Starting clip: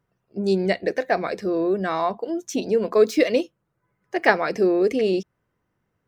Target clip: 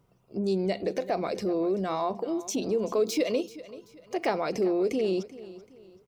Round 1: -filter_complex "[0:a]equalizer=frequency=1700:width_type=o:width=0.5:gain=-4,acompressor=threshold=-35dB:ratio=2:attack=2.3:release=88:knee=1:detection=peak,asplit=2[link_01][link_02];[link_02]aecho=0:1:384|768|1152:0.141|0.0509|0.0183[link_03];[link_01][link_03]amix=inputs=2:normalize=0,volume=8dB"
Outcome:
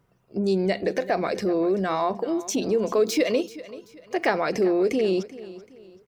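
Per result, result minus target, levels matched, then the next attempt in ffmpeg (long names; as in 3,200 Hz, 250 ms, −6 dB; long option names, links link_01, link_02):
2,000 Hz band +4.0 dB; downward compressor: peak gain reduction −3.5 dB
-filter_complex "[0:a]equalizer=frequency=1700:width_type=o:width=0.5:gain=-13,acompressor=threshold=-35dB:ratio=2:attack=2.3:release=88:knee=1:detection=peak,asplit=2[link_01][link_02];[link_02]aecho=0:1:384|768|1152:0.141|0.0509|0.0183[link_03];[link_01][link_03]amix=inputs=2:normalize=0,volume=8dB"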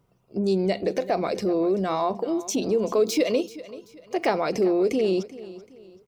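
downward compressor: peak gain reduction −4 dB
-filter_complex "[0:a]equalizer=frequency=1700:width_type=o:width=0.5:gain=-13,acompressor=threshold=-43.5dB:ratio=2:attack=2.3:release=88:knee=1:detection=peak,asplit=2[link_01][link_02];[link_02]aecho=0:1:384|768|1152:0.141|0.0509|0.0183[link_03];[link_01][link_03]amix=inputs=2:normalize=0,volume=8dB"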